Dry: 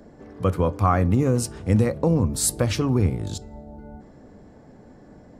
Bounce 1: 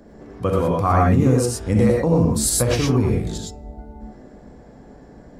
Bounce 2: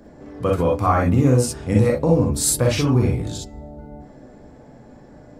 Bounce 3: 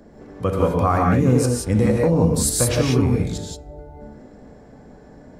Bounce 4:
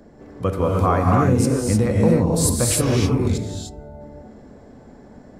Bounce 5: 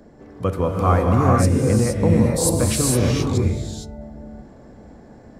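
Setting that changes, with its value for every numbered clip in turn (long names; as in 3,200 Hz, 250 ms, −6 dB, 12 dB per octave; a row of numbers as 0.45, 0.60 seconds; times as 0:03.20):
reverb whose tail is shaped and stops, gate: 140, 80, 200, 330, 490 milliseconds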